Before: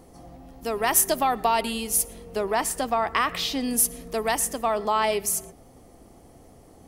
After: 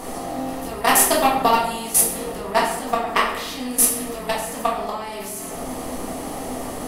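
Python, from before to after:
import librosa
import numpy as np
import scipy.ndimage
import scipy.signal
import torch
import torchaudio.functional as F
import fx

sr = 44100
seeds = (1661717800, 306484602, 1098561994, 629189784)

y = fx.bin_compress(x, sr, power=0.6)
y = fx.level_steps(y, sr, step_db=19)
y = fx.room_shoebox(y, sr, seeds[0], volume_m3=220.0, walls='mixed', distance_m=1.8)
y = y * 10.0 ** (1.5 / 20.0)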